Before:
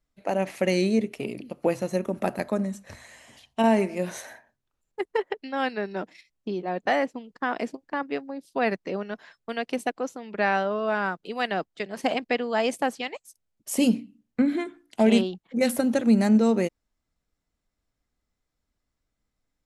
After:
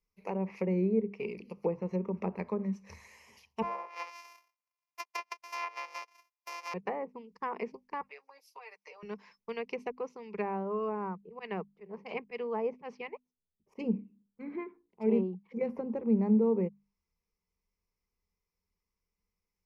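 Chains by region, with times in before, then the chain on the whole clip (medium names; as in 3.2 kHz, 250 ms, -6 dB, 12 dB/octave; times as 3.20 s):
3.62–6.74 s: sorted samples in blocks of 128 samples + Chebyshev high-pass 570 Hz, order 4
8.01–9.03 s: high-pass 630 Hz 24 dB/octave + comb 6.6 ms, depth 90% + compression 4:1, threshold -42 dBFS
11.21–15.11 s: level-controlled noise filter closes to 430 Hz, open at -17.5 dBFS + slow attack 110 ms
whole clip: hum notches 50/100/150/200/250 Hz; low-pass that closes with the level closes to 870 Hz, closed at -21 dBFS; rippled EQ curve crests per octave 0.82, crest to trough 14 dB; trim -9 dB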